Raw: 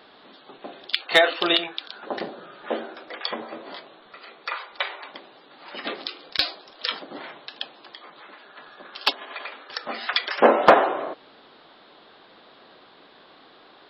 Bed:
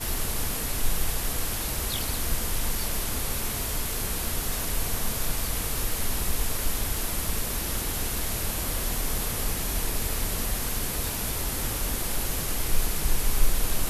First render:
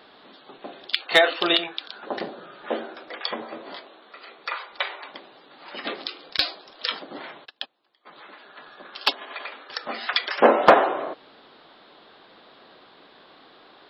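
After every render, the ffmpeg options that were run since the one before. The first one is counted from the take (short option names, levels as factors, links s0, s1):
-filter_complex "[0:a]asettb=1/sr,asplit=3[s0][s1][s2];[s0]atrim=end=3.794[s3];[s1]atrim=start=3.79:end=4.39,asetpts=PTS-STARTPTS,afade=t=in:d=0.004:c=qsin,afade=t=out:st=0.596:d=0.004:c=qsin,highpass=f=220:w=0.5412,highpass=f=220:w=1.3066[s4];[s2]atrim=start=4.386[s5];[s3][s4]acrossfade=d=0.004:c1=hsin:c2=qsin[s6];[s6][s5]acrossfade=d=0.004:c1=qsin:c2=hsin,asplit=3[s7][s8][s9];[s7]afade=t=out:st=7.44:d=0.02[s10];[s8]agate=range=0.0631:threshold=0.0141:ratio=16:release=100:detection=peak,afade=t=in:st=7.44:d=0.02,afade=t=out:st=8.05:d=0.02[s11];[s9]afade=t=in:st=8.05:d=0.02[s12];[s10][s11][s12]amix=inputs=3:normalize=0"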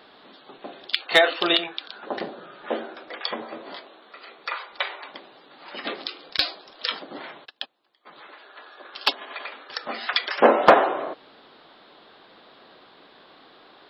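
-filter_complex "[0:a]asettb=1/sr,asplit=3[s0][s1][s2];[s0]atrim=end=1.574[s3];[s1]atrim=start=1.57:end=3.13,asetpts=PTS-STARTPTS,afade=t=in:d=0.004:c=qsin,afade=t=out:st=1.556:d=0.004:c=qsin,lowpass=5500[s4];[s2]atrim=start=3.126[s5];[s3][s4]acrossfade=d=0.004:c1=hsin:c2=qsin[s6];[s6][s5]acrossfade=d=0.004:c1=qsin:c2=hsin,asettb=1/sr,asplit=3[s7][s8][s9];[s7]atrim=end=8.274[s10];[s8]atrim=start=8.27:end=8.94,asetpts=PTS-STARTPTS,afade=t=in:d=0.004:c=qsin,afade=t=out:st=0.666:d=0.004:c=qsin,highpass=f=310:w=0.5412,highpass=f=310:w=1.3066[s11];[s9]atrim=start=8.936[s12];[s10][s11]acrossfade=d=0.004:c1=hsin:c2=qsin[s13];[s13][s12]acrossfade=d=0.004:c1=qsin:c2=hsin"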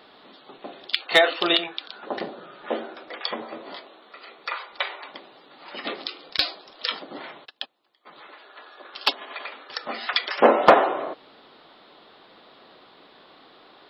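-af "bandreject=f=1600:w=18"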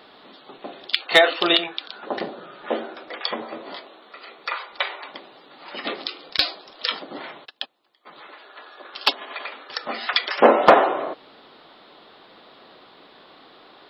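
-af "volume=1.33,alimiter=limit=0.891:level=0:latency=1"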